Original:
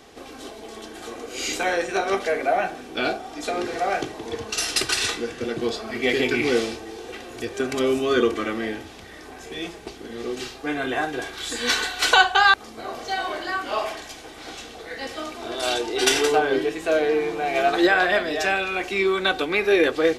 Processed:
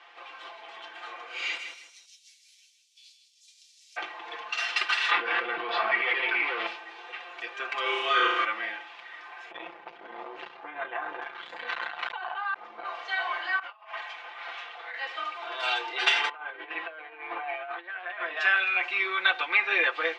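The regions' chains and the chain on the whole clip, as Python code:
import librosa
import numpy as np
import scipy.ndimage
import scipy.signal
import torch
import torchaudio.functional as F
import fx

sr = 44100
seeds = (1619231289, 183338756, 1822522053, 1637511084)

y = fx.envelope_flatten(x, sr, power=0.6, at=(1.57, 3.96), fade=0.02)
y = fx.cheby2_highpass(y, sr, hz=1400.0, order=4, stop_db=70, at=(1.57, 3.96), fade=0.02)
y = fx.echo_feedback(y, sr, ms=158, feedback_pct=28, wet_db=-8, at=(1.57, 3.96), fade=0.02)
y = fx.chain(y, sr, fx.overload_stage(gain_db=18.0),
    fx.air_absorb(metres=260.0),
    fx.env_flatten(amount_pct=100), at=(5.11, 6.67))
y = fx.chain(y, sr, fx.lowpass(hz=11000.0, slope=24),
    fx.high_shelf(hz=5400.0, db=6.0),
    fx.room_flutter(wall_m=6.1, rt60_s=0.97), at=(7.82, 8.45))
y = fx.chain(y, sr, fx.tilt_eq(slope=-4.5),
    fx.over_compress(threshold_db=-24.0, ratio=-1.0),
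    fx.transformer_sat(knee_hz=500.0), at=(9.51, 12.85))
y = fx.chain(y, sr, fx.over_compress(threshold_db=-35.0, ratio=-0.5),
    fx.highpass(hz=440.0, slope=12),
    fx.high_shelf(hz=4100.0, db=-10.5), at=(13.59, 14.94))
y = fx.chain(y, sr, fx.self_delay(depth_ms=0.081),
    fx.over_compress(threshold_db=-30.0, ratio=-1.0),
    fx.air_absorb(metres=380.0), at=(16.29, 18.37))
y = scipy.signal.sosfilt(scipy.signal.cheby1(2, 1.0, [950.0, 2800.0], 'bandpass', fs=sr, output='sos'), y)
y = y + 0.73 * np.pad(y, (int(5.8 * sr / 1000.0), 0))[:len(y)]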